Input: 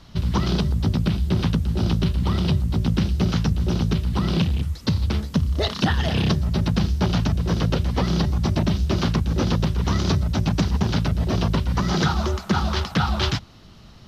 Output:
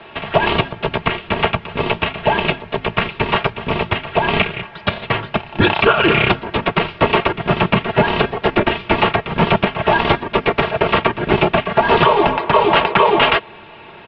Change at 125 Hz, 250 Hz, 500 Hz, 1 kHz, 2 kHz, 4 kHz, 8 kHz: −4.0 dB, +1.5 dB, +13.5 dB, +14.5 dB, +15.0 dB, +8.0 dB, can't be measured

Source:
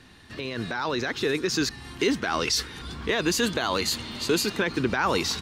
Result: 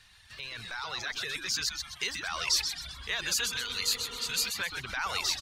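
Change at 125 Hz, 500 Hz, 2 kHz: −14.5, −19.5, −4.5 decibels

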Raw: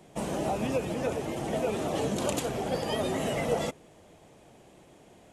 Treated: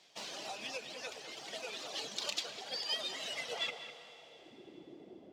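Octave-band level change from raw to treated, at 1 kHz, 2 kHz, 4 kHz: −13.5, −3.5, +3.5 decibels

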